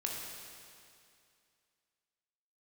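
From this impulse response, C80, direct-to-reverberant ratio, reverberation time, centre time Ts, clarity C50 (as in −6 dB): 2.0 dB, −1.5 dB, 2.4 s, 107 ms, 0.5 dB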